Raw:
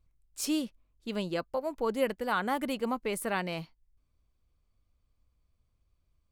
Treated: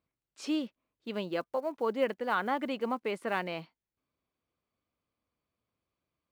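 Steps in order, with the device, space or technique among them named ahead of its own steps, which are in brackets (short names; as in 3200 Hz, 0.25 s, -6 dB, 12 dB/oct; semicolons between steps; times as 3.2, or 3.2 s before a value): early digital voice recorder (BPF 220–3500 Hz; block floating point 7-bit)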